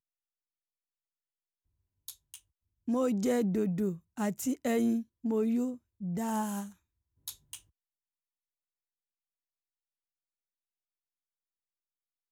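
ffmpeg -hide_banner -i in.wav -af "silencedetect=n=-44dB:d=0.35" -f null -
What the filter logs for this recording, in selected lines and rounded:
silence_start: 0.00
silence_end: 2.08 | silence_duration: 2.08
silence_start: 2.37
silence_end: 2.88 | silence_duration: 0.51
silence_start: 6.70
silence_end: 7.28 | silence_duration: 0.57
silence_start: 7.57
silence_end: 12.32 | silence_duration: 4.74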